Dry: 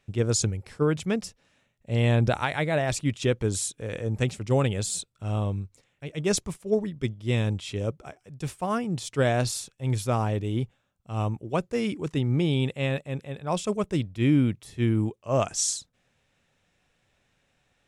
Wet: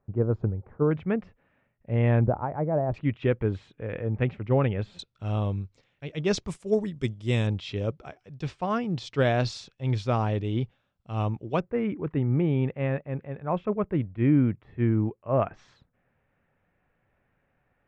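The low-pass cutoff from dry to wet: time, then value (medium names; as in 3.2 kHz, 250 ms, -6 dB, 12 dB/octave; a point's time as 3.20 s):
low-pass 24 dB/octave
1.2 kHz
from 0.91 s 2.1 kHz
from 2.24 s 1 kHz
from 2.94 s 2.4 kHz
from 4.99 s 5.1 kHz
from 6.48 s 8.9 kHz
from 7.47 s 4.9 kHz
from 11.60 s 2 kHz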